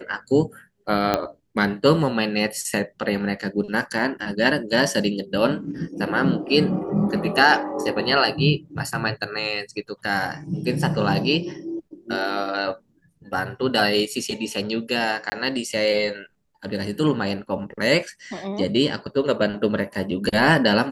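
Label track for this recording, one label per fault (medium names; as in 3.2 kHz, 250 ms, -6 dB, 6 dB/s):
1.140000	1.140000	pop -6 dBFS
15.300000	15.320000	dropout 20 ms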